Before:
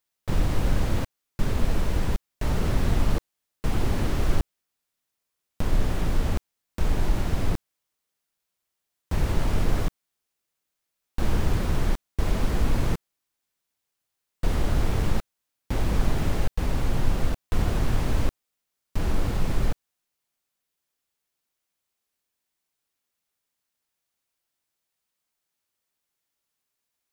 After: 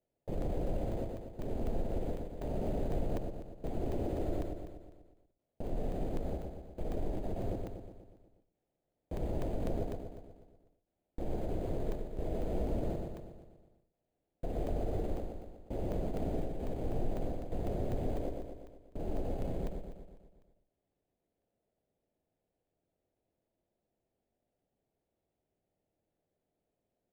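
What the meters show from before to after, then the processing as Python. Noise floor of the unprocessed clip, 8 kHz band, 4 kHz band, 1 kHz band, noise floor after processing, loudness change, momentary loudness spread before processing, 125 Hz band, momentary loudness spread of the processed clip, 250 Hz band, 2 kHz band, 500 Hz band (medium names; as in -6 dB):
-83 dBFS, -20.5 dB, -20.5 dB, -10.0 dB, under -85 dBFS, -10.5 dB, 7 LU, -12.5 dB, 13 LU, -7.5 dB, -20.5 dB, -3.0 dB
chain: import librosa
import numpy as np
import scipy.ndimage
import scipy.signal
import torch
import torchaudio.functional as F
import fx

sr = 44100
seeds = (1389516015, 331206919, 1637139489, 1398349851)

y = fx.bass_treble(x, sr, bass_db=-11, treble_db=5)
y = 10.0 ** (-21.5 / 20.0) * (np.abs((y / 10.0 ** (-21.5 / 20.0) + 3.0) % 4.0 - 2.0) - 1.0)
y = fx.echo_feedback(y, sr, ms=121, feedback_pct=58, wet_db=-4.0)
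y = np.repeat(y[::8], 8)[:len(y)]
y = fx.curve_eq(y, sr, hz=(680.0, 1100.0, 1900.0), db=(0, -22, -20))
y = fx.buffer_crackle(y, sr, first_s=0.42, period_s=0.25, block=64, kind='zero')
y = fx.end_taper(y, sr, db_per_s=110.0)
y = F.gain(torch.from_numpy(y), -3.5).numpy()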